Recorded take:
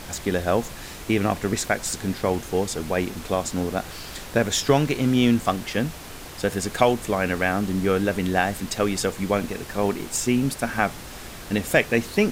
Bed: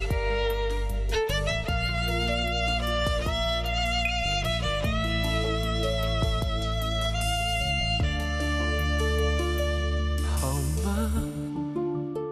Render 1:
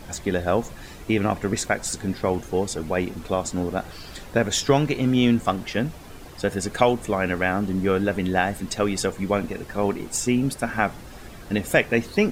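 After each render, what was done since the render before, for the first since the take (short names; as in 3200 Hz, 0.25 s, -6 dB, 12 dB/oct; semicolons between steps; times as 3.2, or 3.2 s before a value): denoiser 9 dB, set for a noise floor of -39 dBFS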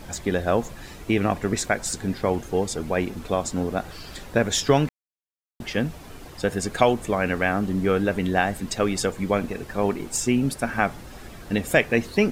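4.89–5.6 mute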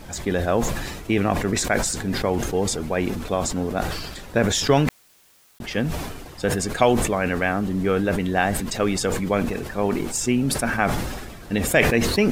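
sustainer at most 39 dB/s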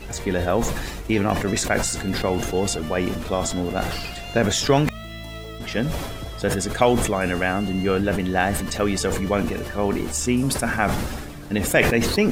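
add bed -9 dB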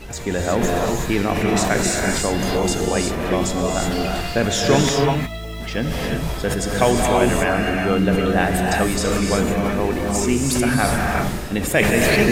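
non-linear reverb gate 0.39 s rising, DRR -1 dB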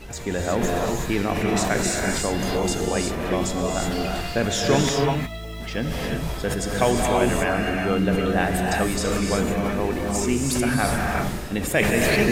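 gain -3.5 dB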